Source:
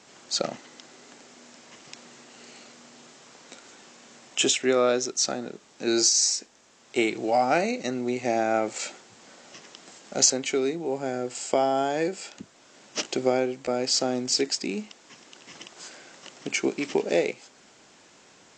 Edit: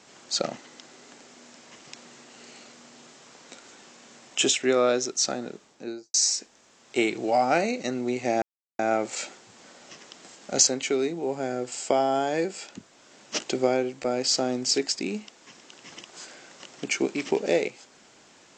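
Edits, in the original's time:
0:05.53–0:06.14: fade out and dull
0:08.42: splice in silence 0.37 s

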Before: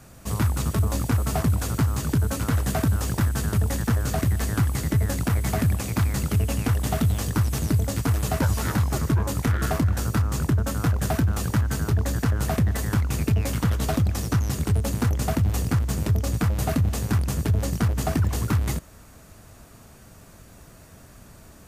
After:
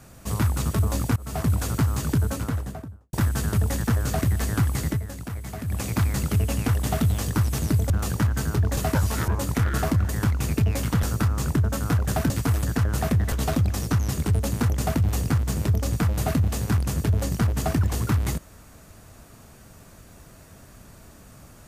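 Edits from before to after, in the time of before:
0:01.16–0:01.51: fade in, from −24 dB
0:02.12–0:03.13: fade out and dull
0:04.88–0:05.80: duck −10 dB, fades 0.14 s
0:07.90–0:08.24: swap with 0:11.24–0:12.11
0:08.75–0:09.16: remove
0:12.79–0:13.73: move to 0:09.97

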